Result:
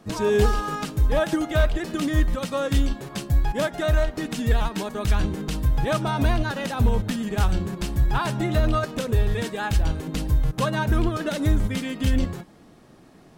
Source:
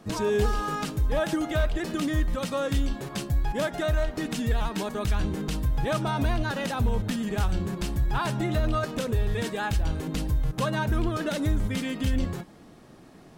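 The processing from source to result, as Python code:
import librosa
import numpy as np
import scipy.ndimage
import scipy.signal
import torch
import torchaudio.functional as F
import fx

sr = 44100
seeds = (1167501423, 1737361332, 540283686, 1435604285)

y = fx.upward_expand(x, sr, threshold_db=-33.0, expansion=1.5)
y = y * librosa.db_to_amplitude(6.0)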